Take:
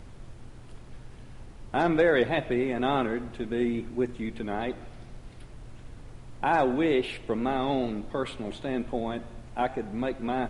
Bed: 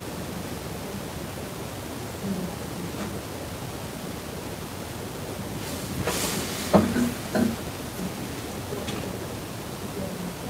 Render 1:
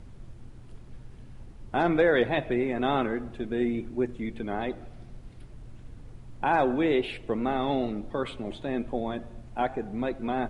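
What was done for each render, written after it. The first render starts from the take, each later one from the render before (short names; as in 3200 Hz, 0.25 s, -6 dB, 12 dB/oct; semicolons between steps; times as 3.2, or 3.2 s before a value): denoiser 6 dB, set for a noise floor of -46 dBFS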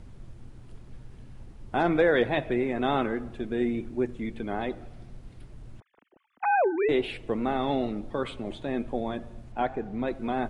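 5.8–6.89 sine-wave speech; 9.52–10.08 air absorption 67 m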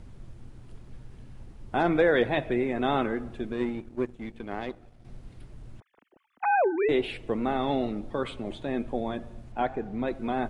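3.52–5.05 power-law curve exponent 1.4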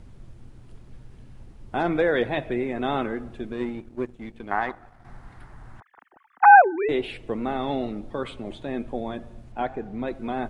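4.51–6.62 band shelf 1200 Hz +14 dB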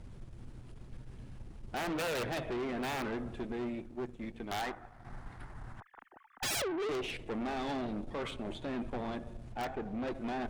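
wrapped overs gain 15 dB; tube stage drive 33 dB, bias 0.45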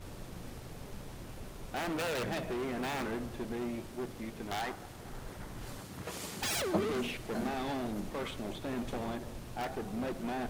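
add bed -15 dB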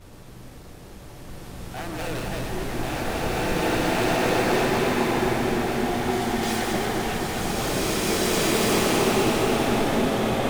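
regenerating reverse delay 0.127 s, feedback 67%, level -3 dB; bloom reverb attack 2.18 s, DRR -11.5 dB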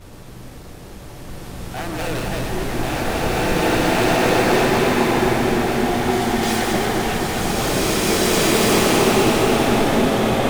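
gain +5.5 dB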